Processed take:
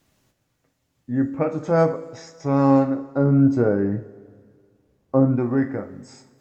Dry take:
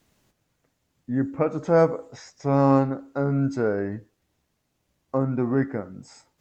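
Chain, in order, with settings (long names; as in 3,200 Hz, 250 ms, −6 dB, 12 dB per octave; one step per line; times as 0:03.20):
0:02.98–0:05.36: tilt shelving filter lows +6 dB, about 1,200 Hz
coupled-rooms reverb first 0.29 s, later 1.9 s, from −18 dB, DRR 6 dB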